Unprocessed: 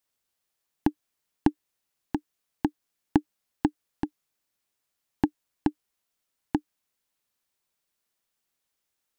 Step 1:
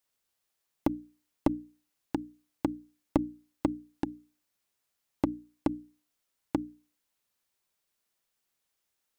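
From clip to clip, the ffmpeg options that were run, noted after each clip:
-af "bandreject=f=60:t=h:w=6,bandreject=f=120:t=h:w=6,bandreject=f=180:t=h:w=6,bandreject=f=240:t=h:w=6,bandreject=f=300:t=h:w=6,aeval=exprs='clip(val(0),-1,0.0944)':c=same"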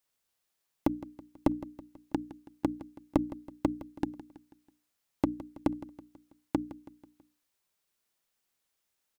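-af "aecho=1:1:163|326|489|652:0.158|0.0792|0.0396|0.0198"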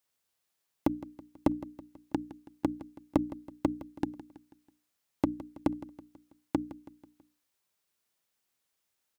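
-af "highpass=43"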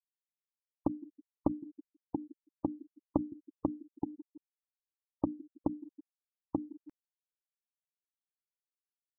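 -af "afftfilt=real='re*gte(hypot(re,im),0.0447)':imag='im*gte(hypot(re,im),0.0447)':win_size=1024:overlap=0.75,areverse,acompressor=mode=upward:threshold=0.0126:ratio=2.5,areverse,volume=0.631"

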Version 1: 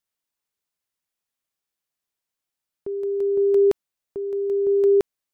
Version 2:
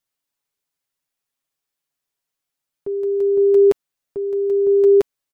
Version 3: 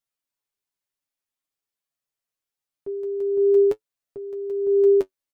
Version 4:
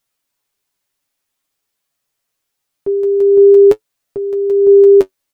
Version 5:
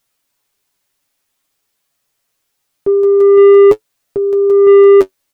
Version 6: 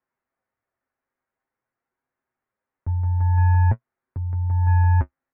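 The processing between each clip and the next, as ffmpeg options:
-af "aecho=1:1:7.2:0.54,volume=1.19"
-af "flanger=delay=8.7:depth=1.9:regen=42:speed=0.48:shape=sinusoidal,volume=0.75"
-af "alimiter=level_in=5.62:limit=0.891:release=50:level=0:latency=1,volume=0.891"
-af "acontrast=68,volume=0.891"
-af "highpass=f=200:t=q:w=0.5412,highpass=f=200:t=q:w=1.307,lowpass=f=2200:t=q:w=0.5176,lowpass=f=2200:t=q:w=0.7071,lowpass=f=2200:t=q:w=1.932,afreqshift=-310,lowshelf=f=89:g=-8.5,volume=0.422"

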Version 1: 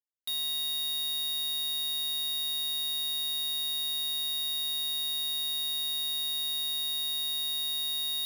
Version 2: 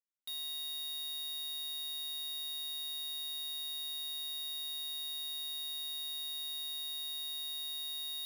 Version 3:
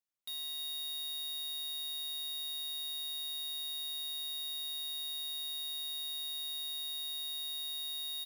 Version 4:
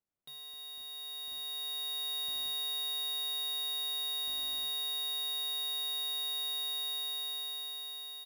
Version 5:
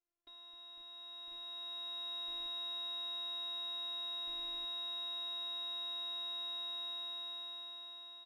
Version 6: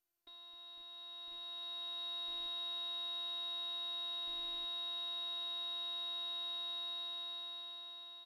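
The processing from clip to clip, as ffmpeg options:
-af "bandreject=f=50:t=h:w=6,bandreject=f=100:t=h:w=6,bandreject=f=150:t=h:w=6,bandreject=f=200:t=h:w=6,bandreject=f=250:t=h:w=6,volume=0.376"
-af "aecho=1:1:312:0.0891"
-af "dynaudnorm=f=430:g=7:m=3.55,tiltshelf=f=1300:g=9"
-af "adynamicsmooth=sensitivity=2:basefreq=2700,afftfilt=real='hypot(re,im)*cos(PI*b)':imag='0':win_size=512:overlap=0.75,volume=1.33"
-ar 48000 -c:a mp2 -b:a 96k

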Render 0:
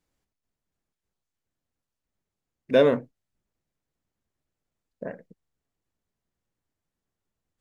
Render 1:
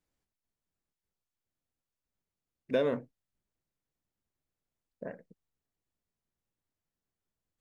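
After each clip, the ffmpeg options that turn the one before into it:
-af "acompressor=threshold=0.126:ratio=6,volume=0.501"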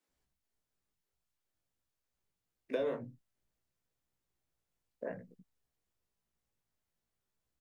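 -filter_complex "[0:a]acrossover=split=230[s0][s1];[s0]adelay=80[s2];[s2][s1]amix=inputs=2:normalize=0,flanger=delay=15.5:depth=2.7:speed=0.53,acrossover=split=370|930[s3][s4][s5];[s3]acompressor=threshold=0.00447:ratio=4[s6];[s4]acompressor=threshold=0.01:ratio=4[s7];[s5]acompressor=threshold=0.00224:ratio=4[s8];[s6][s7][s8]amix=inputs=3:normalize=0,volume=1.78"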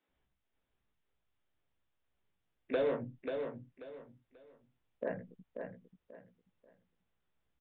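-af "aresample=8000,volume=29.9,asoftclip=hard,volume=0.0335,aresample=44100,aecho=1:1:537|1074|1611:0.501|0.135|0.0365,volume=1.5"

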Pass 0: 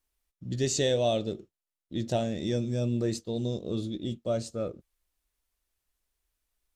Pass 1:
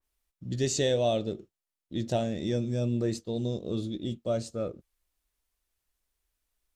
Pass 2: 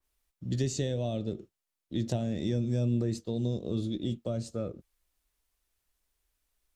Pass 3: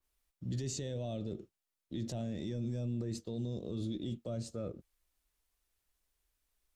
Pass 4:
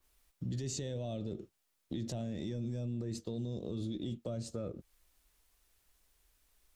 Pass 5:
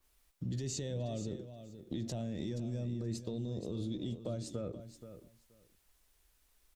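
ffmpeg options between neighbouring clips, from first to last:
-af "adynamicequalizer=threshold=0.00501:dfrequency=2800:dqfactor=0.7:tfrequency=2800:tqfactor=0.7:attack=5:release=100:ratio=0.375:range=2:mode=cutabove:tftype=highshelf"
-filter_complex "[0:a]acrossover=split=260[s0][s1];[s1]acompressor=threshold=0.0158:ratio=10[s2];[s0][s2]amix=inputs=2:normalize=0,volume=1.26"
-af "alimiter=level_in=1.5:limit=0.0631:level=0:latency=1:release=13,volume=0.668,volume=0.75"
-af "acompressor=threshold=0.00398:ratio=3,volume=2.99"
-af "aecho=1:1:477|954:0.266|0.0426"

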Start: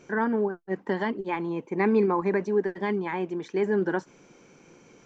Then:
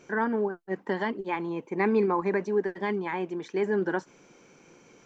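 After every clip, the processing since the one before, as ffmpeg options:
-af "lowshelf=f=330:g=-4"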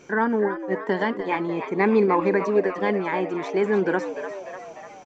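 -filter_complex "[0:a]asplit=8[s0][s1][s2][s3][s4][s5][s6][s7];[s1]adelay=298,afreqshift=93,volume=0.316[s8];[s2]adelay=596,afreqshift=186,volume=0.184[s9];[s3]adelay=894,afreqshift=279,volume=0.106[s10];[s4]adelay=1192,afreqshift=372,volume=0.0617[s11];[s5]adelay=1490,afreqshift=465,volume=0.0359[s12];[s6]adelay=1788,afreqshift=558,volume=0.0207[s13];[s7]adelay=2086,afreqshift=651,volume=0.012[s14];[s0][s8][s9][s10][s11][s12][s13][s14]amix=inputs=8:normalize=0,volume=1.78"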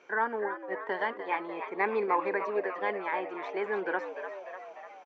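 -af "highpass=570,lowpass=2900,volume=0.631"

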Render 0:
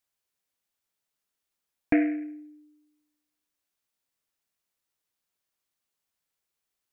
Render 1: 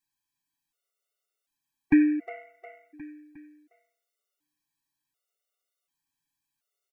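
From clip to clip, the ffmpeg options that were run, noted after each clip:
-filter_complex "[0:a]aecho=1:1:7:0.65,asplit=2[s0][s1];[s1]aecho=0:1:358|716|1074|1432|1790:0.376|0.173|0.0795|0.0366|0.0168[s2];[s0][s2]amix=inputs=2:normalize=0,afftfilt=real='re*gt(sin(2*PI*0.68*pts/sr)*(1-2*mod(floor(b*sr/1024/380),2)),0)':imag='im*gt(sin(2*PI*0.68*pts/sr)*(1-2*mod(floor(b*sr/1024/380),2)),0)':win_size=1024:overlap=0.75"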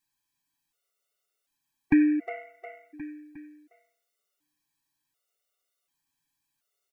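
-af "alimiter=limit=0.178:level=0:latency=1:release=333,volume=1.5"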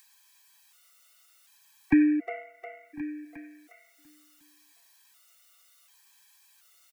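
-filter_complex "[0:a]acrossover=split=140|390|830[s0][s1][s2][s3];[s3]acompressor=mode=upward:threshold=0.00631:ratio=2.5[s4];[s0][s1][s2][s4]amix=inputs=4:normalize=0,asplit=2[s5][s6];[s6]adelay=1050,volume=0.0891,highshelf=f=4000:g=-23.6[s7];[s5][s7]amix=inputs=2:normalize=0"

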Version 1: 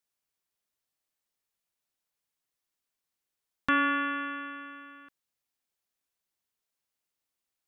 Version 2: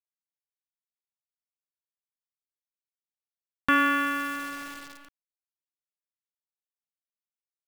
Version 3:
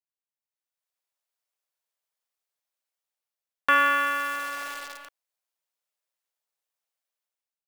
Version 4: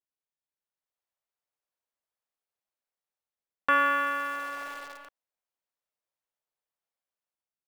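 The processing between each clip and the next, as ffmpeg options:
-af "acrusher=bits=8:dc=4:mix=0:aa=0.000001,volume=1.5"
-af "lowshelf=f=360:t=q:w=1.5:g=-14,dynaudnorm=f=280:g=5:m=5.96,tremolo=f=120:d=0.182,volume=0.447"
-af "highshelf=f=2200:g=-10.5"

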